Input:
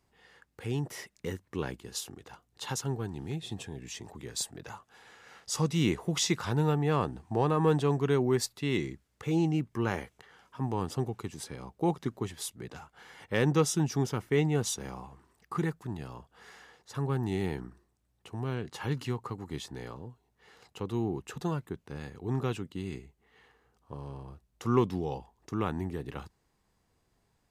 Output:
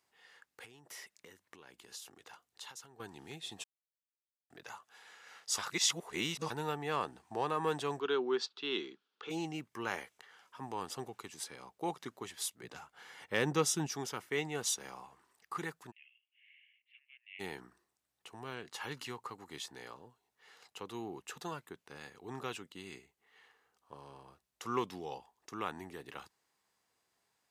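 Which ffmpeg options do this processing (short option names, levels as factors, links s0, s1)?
-filter_complex "[0:a]asettb=1/sr,asplit=3[s0][s1][s2];[s0]atrim=end=0.644[s3];[s1]atrim=start=0.64:end=3,asetpts=PTS-STARTPTS,afade=t=in:d=0.004:c=qsin,afade=t=out:st=2.356:d=0.004:c=qsin,acompressor=threshold=0.00708:ratio=10:attack=3.2:release=140:knee=1:detection=peak[s4];[s2]atrim=start=2.996[s5];[s3][s4]acrossfade=d=0.004:c1=hsin:c2=qsin[s6];[s6][s5]acrossfade=d=0.004:c1=qsin:c2=hsin,asplit=3[s7][s8][s9];[s7]afade=t=out:st=7.99:d=0.02[s10];[s8]highpass=f=200:w=0.5412,highpass=f=200:w=1.3066,equalizer=f=400:t=q:w=4:g=6,equalizer=f=620:t=q:w=4:g=-8,equalizer=f=1400:t=q:w=4:g=6,equalizer=f=2000:t=q:w=4:g=-10,equalizer=f=3300:t=q:w=4:g=6,lowpass=f=4600:w=0.5412,lowpass=f=4600:w=1.3066,afade=t=in:st=7.99:d=0.02,afade=t=out:st=9.29:d=0.02[s11];[s9]afade=t=in:st=9.29:d=0.02[s12];[s10][s11][s12]amix=inputs=3:normalize=0,asettb=1/sr,asplit=3[s13][s14][s15];[s13]atrim=end=12.634[s16];[s14]atrim=start=12.63:end=13.87,asetpts=PTS-STARTPTS,afade=t=in:d=0.004:c=qsin,afade=t=out:st=1.236:d=0.004:c=qsin,lowshelf=f=370:g=8[s17];[s15]atrim=start=13.866[s18];[s16][s17]acrossfade=d=0.004:c1=hsin:c2=qsin[s19];[s19][s18]acrossfade=d=0.004:c1=qsin:c2=hsin,asplit=3[s20][s21][s22];[s20]afade=t=out:st=15.9:d=0.02[s23];[s21]asuperpass=centerf=2500:order=8:qfactor=2.7,afade=t=in:st=15.9:d=0.02,afade=t=out:st=17.39:d=0.02[s24];[s22]afade=t=in:st=17.39:d=0.02[s25];[s23][s24][s25]amix=inputs=3:normalize=0,asplit=5[s26][s27][s28][s29][s30];[s26]atrim=end=3.64,asetpts=PTS-STARTPTS,afade=t=out:st=3.636:d=0.004:c=hsin[s31];[s27]atrim=start=3.64:end=4.5,asetpts=PTS-STARTPTS,volume=0[s32];[s28]atrim=start=4.5:end=5.582,asetpts=PTS-STARTPTS,afade=t=in:d=0.004:c=hsin[s33];[s29]atrim=start=5.578:end=6.502,asetpts=PTS-STARTPTS,areverse[s34];[s30]atrim=start=6.498[s35];[s31][s32][s33]concat=n=3:v=0:a=1[s36];[s36][s34]acrossfade=d=0.004:c1=hsin:c2=hsin[s37];[s37][s35]acrossfade=d=0.004:c1=hsin:c2=hsin,highpass=f=1100:p=1"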